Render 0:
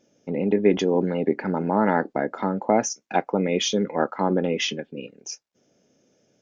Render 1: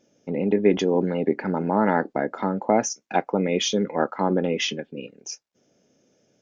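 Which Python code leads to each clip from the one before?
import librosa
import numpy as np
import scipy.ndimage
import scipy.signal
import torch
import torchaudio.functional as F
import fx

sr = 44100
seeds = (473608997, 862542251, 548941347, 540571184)

y = x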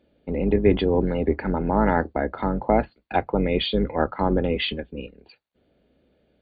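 y = fx.octave_divider(x, sr, octaves=2, level_db=-3.0)
y = fx.brickwall_lowpass(y, sr, high_hz=4700.0)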